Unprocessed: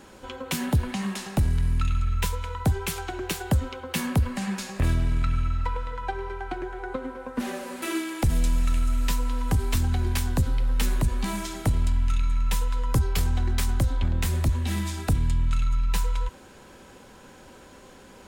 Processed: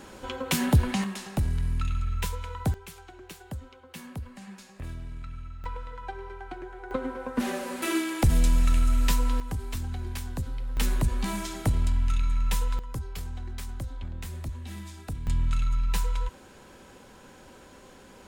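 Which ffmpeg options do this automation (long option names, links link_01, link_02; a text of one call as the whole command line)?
ffmpeg -i in.wav -af "asetnsamples=nb_out_samples=441:pad=0,asendcmd='1.04 volume volume -4dB;2.74 volume volume -15dB;5.64 volume volume -7dB;6.91 volume volume 1.5dB;9.4 volume volume -9dB;10.77 volume volume -1.5dB;12.79 volume volume -12dB;15.27 volume volume -2dB',volume=2.5dB" out.wav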